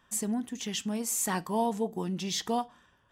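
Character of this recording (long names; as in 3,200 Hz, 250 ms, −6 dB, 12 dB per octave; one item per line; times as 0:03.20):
background noise floor −67 dBFS
spectral slope −4.0 dB per octave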